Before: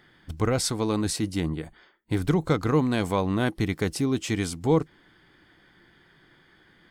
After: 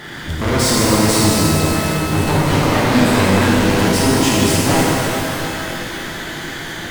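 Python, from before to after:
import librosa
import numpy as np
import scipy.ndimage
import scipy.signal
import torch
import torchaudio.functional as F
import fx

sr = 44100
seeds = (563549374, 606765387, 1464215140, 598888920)

y = fx.fold_sine(x, sr, drive_db=12, ceiling_db=-10.0)
y = fx.power_curve(y, sr, exponent=0.5)
y = fx.rev_shimmer(y, sr, seeds[0], rt60_s=3.2, semitones=12, shimmer_db=-8, drr_db=-7.0)
y = y * librosa.db_to_amplitude(-9.5)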